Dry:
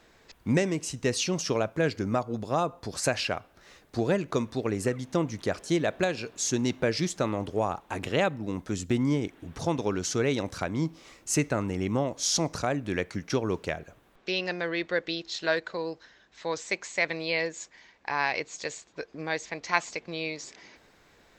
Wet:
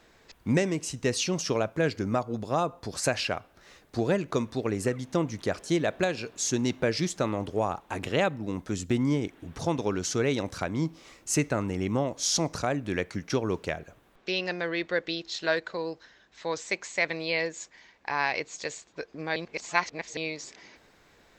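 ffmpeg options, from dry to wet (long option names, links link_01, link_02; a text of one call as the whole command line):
ffmpeg -i in.wav -filter_complex "[0:a]asplit=3[link_01][link_02][link_03];[link_01]atrim=end=19.362[link_04];[link_02]atrim=start=19.358:end=20.172,asetpts=PTS-STARTPTS,areverse[link_05];[link_03]atrim=start=20.168[link_06];[link_04][link_05]acrossfade=duration=0.004:curve1=hsin:curve2=hsin[link_07];[link_07][link_06]acrossfade=duration=0.004:curve1=hsin:curve2=hsin" out.wav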